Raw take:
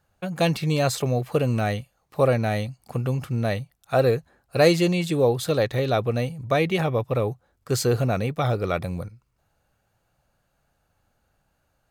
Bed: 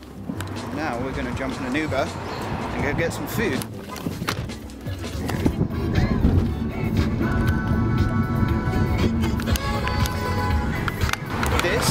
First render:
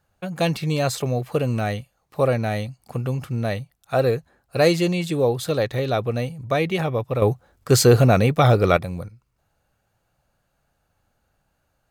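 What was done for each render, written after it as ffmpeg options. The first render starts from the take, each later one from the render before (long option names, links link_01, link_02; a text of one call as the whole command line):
ffmpeg -i in.wav -filter_complex "[0:a]asplit=3[link_01][link_02][link_03];[link_01]atrim=end=7.222[link_04];[link_02]atrim=start=7.218:end=8.772,asetpts=PTS-STARTPTS,volume=8dB[link_05];[link_03]atrim=start=8.768[link_06];[link_04][link_05]acrossfade=duration=0.004:curve1=hsin:curve2=hsin[link_07];[link_07][link_06]acrossfade=duration=0.004:curve1=hsin:curve2=hsin" out.wav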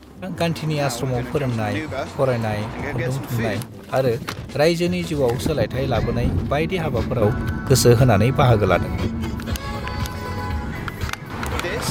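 ffmpeg -i in.wav -i bed.wav -filter_complex "[1:a]volume=-3.5dB[link_01];[0:a][link_01]amix=inputs=2:normalize=0" out.wav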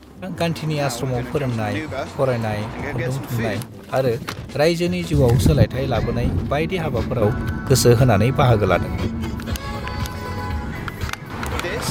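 ffmpeg -i in.wav -filter_complex "[0:a]asettb=1/sr,asplit=3[link_01][link_02][link_03];[link_01]atrim=end=5.134[link_04];[link_02]atrim=start=5.13:end=5.65,asetpts=PTS-STARTPTS,afade=type=in:duration=0.004:curve=qsin,afade=type=out:start_time=0.516:duration=0.004:curve=qsin,bass=frequency=250:gain=11,treble=frequency=4000:gain=4[link_05];[link_03]atrim=start=5.646[link_06];[link_04][link_05]acrossfade=duration=0.004:curve1=hsin:curve2=qsin[link_07];[link_07][link_06]acrossfade=duration=0.004:curve1=qsin:curve2=hsin" out.wav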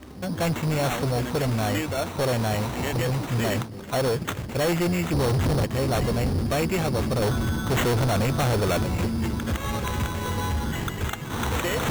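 ffmpeg -i in.wav -af "acrusher=samples=9:mix=1:aa=0.000001,volume=20.5dB,asoftclip=hard,volume=-20.5dB" out.wav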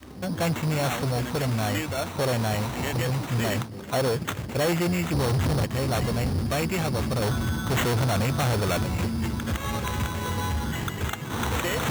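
ffmpeg -i in.wav -af "highpass=57,adynamicequalizer=threshold=0.02:dfrequency=410:dqfactor=0.88:tfrequency=410:tqfactor=0.88:attack=5:release=100:ratio=0.375:range=2:mode=cutabove:tftype=bell" out.wav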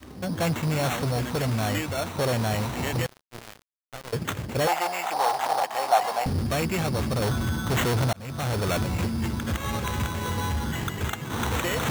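ffmpeg -i in.wav -filter_complex "[0:a]asettb=1/sr,asplit=3[link_01][link_02][link_03];[link_01]atrim=end=3.064[link_04];[link_02]atrim=start=3.06:end=4.13,asetpts=PTS-STARTPTS,afade=type=in:duration=0.004:curve=qsin,afade=type=out:start_time=1.066:duration=0.004:curve=qsin,acrusher=bits=2:mix=0:aa=0.5[link_05];[link_03]atrim=start=4.126[link_06];[link_04][link_05]acrossfade=duration=0.004:curve1=hsin:curve2=qsin[link_07];[link_07][link_06]acrossfade=duration=0.004:curve1=qsin:curve2=hsin,asettb=1/sr,asplit=3[link_08][link_09][link_10];[link_08]atrim=end=4.674[link_11];[link_09]atrim=start=4.67:end=6.26,asetpts=PTS-STARTPTS,afade=type=in:duration=0.004:curve=qsin,afade=type=out:start_time=1.586:duration=0.004:curve=qsin,highpass=frequency=780:width_type=q:width=6.5[link_12];[link_10]atrim=start=6.256[link_13];[link_11][link_12]acrossfade=duration=0.004:curve1=hsin:curve2=qsin[link_14];[link_14][link_13]acrossfade=duration=0.004:curve1=qsin:curve2=hsin,asplit=2[link_15][link_16];[link_15]atrim=end=8.13,asetpts=PTS-STARTPTS,afade=type=out:start_time=8.126:duration=0.004:curve=hsin[link_17];[link_16]atrim=start=8.13,asetpts=PTS-STARTPTS,afade=type=in:duration=0.75:curve=qsin[link_18];[link_17][link_18]concat=n=2:v=0:a=1" out.wav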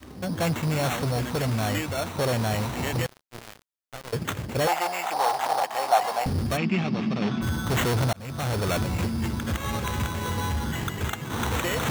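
ffmpeg -i in.wav -filter_complex "[0:a]asplit=3[link_01][link_02][link_03];[link_01]afade=type=out:start_time=6.56:duration=0.02[link_04];[link_02]highpass=frequency=150:width=0.5412,highpass=frequency=150:width=1.3066,equalizer=frequency=200:width_type=q:width=4:gain=10,equalizer=frequency=520:width_type=q:width=4:gain=-9,equalizer=frequency=940:width_type=q:width=4:gain=-4,equalizer=frequency=1500:width_type=q:width=4:gain=-5,equalizer=frequency=2600:width_type=q:width=4:gain=4,equalizer=frequency=4200:width_type=q:width=4:gain=-6,lowpass=frequency=4700:width=0.5412,lowpass=frequency=4700:width=1.3066,afade=type=in:start_time=6.56:duration=0.02,afade=type=out:start_time=7.41:duration=0.02[link_05];[link_03]afade=type=in:start_time=7.41:duration=0.02[link_06];[link_04][link_05][link_06]amix=inputs=3:normalize=0" out.wav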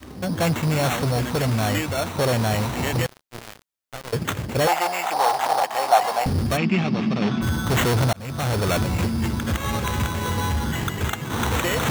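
ffmpeg -i in.wav -af "volume=4dB" out.wav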